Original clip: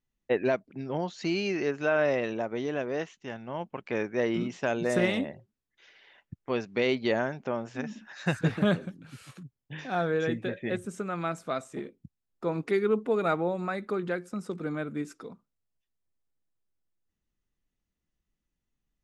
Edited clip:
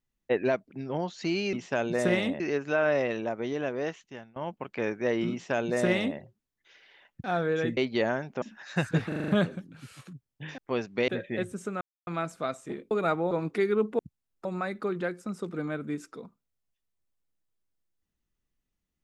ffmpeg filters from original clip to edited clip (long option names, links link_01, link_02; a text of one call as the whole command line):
ffmpeg -i in.wav -filter_complex "[0:a]asplit=19[link_01][link_02][link_03][link_04][link_05][link_06][link_07][link_08][link_09][link_10][link_11][link_12][link_13][link_14][link_15][link_16][link_17][link_18][link_19];[link_01]atrim=end=1.532[link_20];[link_02]atrim=start=4.438:end=5.312[link_21];[link_03]atrim=start=1.528:end=3.49,asetpts=PTS-STARTPTS,afade=type=out:start_time=1.612:duration=0.35:silence=0.0749894[link_22];[link_04]atrim=start=3.49:end=6.372,asetpts=PTS-STARTPTS,afade=type=in:duration=0.004:curve=hsin:silence=0.0749894[link_23];[link_05]atrim=start=9.878:end=10.412[link_24];[link_06]atrim=start=6.868:end=7.522[link_25];[link_07]atrim=start=7.918:end=8.622[link_26];[link_08]atrim=start=8.578:end=8.622[link_27];[link_09]atrim=start=8.578:end=8.622[link_28];[link_10]atrim=start=8.578:end=8.622[link_29];[link_11]atrim=start=8.578:end=8.622[link_30];[link_12]atrim=start=8.578:end=9.882[link_31];[link_13]atrim=start=6.368:end=6.872[link_32];[link_14]atrim=start=10.408:end=11.14,asetpts=PTS-STARTPTS,afade=type=out:start_time=0.728:duration=0.004:curve=hsin,apad=pad_dur=0.26[link_33];[link_15]atrim=start=11.14:end=11.982,asetpts=PTS-STARTPTS,afade=type=in:duration=0.004:curve=hsin[link_34];[link_16]atrim=start=13.118:end=13.522[link_35];[link_17]atrim=start=12.438:end=13.122[link_36];[link_18]atrim=start=11.978:end=12.442[link_37];[link_19]atrim=start=13.518[link_38];[link_20][link_21]acrossfade=duration=0.004:curve1=hsin:curve2=hsin[link_39];[link_22][link_23]concat=n=2:v=0:a=1[link_40];[link_39][link_40]acrossfade=duration=0.004:curve1=hsin:curve2=hsin[link_41];[link_41][link_24]acrossfade=duration=0.004:curve1=hsin:curve2=hsin[link_42];[link_42][link_25]acrossfade=duration=0.004:curve1=hsin:curve2=hsin[link_43];[link_43][link_26]acrossfade=duration=0.004:curve1=hsin:curve2=hsin[link_44];[link_44][link_27]acrossfade=duration=0.004:curve1=hsin:curve2=hsin[link_45];[link_45][link_28]acrossfade=duration=0.004:curve1=hsin:curve2=hsin[link_46];[link_46][link_29]acrossfade=duration=0.004:curve1=hsin:curve2=hsin[link_47];[link_47][link_30]acrossfade=duration=0.004:curve1=hsin:curve2=hsin[link_48];[link_48][link_31]acrossfade=duration=0.004:curve1=hsin:curve2=hsin[link_49];[link_49][link_32]acrossfade=duration=0.004:curve1=hsin:curve2=hsin[link_50];[link_33][link_34]concat=n=2:v=0:a=1[link_51];[link_50][link_51]acrossfade=duration=0.004:curve1=hsin:curve2=hsin[link_52];[link_52][link_35]acrossfade=duration=0.004:curve1=hsin:curve2=hsin[link_53];[link_53][link_36]acrossfade=duration=0.004:curve1=hsin:curve2=hsin[link_54];[link_54][link_37]acrossfade=duration=0.004:curve1=hsin:curve2=hsin[link_55];[link_55][link_38]acrossfade=duration=0.004:curve1=hsin:curve2=hsin" out.wav